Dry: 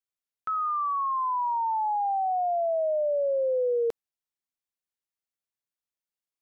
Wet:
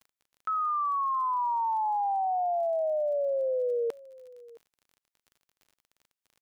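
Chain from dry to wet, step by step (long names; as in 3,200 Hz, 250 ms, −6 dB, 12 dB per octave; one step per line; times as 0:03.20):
low-shelf EQ 330 Hz −9.5 dB
single-tap delay 668 ms −21 dB
surface crackle 35 per second −47 dBFS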